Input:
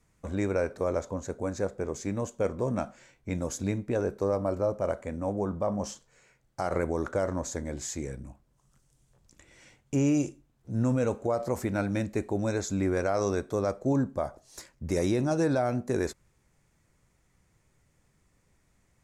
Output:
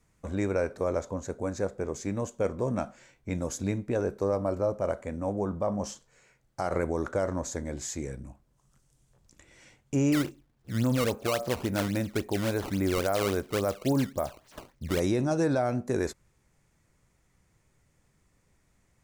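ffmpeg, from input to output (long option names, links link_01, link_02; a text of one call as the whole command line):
ffmpeg -i in.wav -filter_complex "[0:a]asettb=1/sr,asplit=3[link_01][link_02][link_03];[link_01]atrim=end=10.124[link_04];[link_02]atrim=start=10.12:end=15,asetpts=PTS-STARTPTS,afade=type=in:duration=0.004:curve=qsin,afade=type=out:start_time=4.876:duration=0.004:curve=qsin,acrusher=samples=15:mix=1:aa=0.000001:lfo=1:lforange=24:lforate=3.6[link_05];[link_03]atrim=start=14.996[link_06];[link_04][link_05]acrossfade=duration=0.004:curve1=hsin:curve2=qsin[link_07];[link_07][link_06]acrossfade=duration=0.004:curve1=qsin:curve2=hsin" out.wav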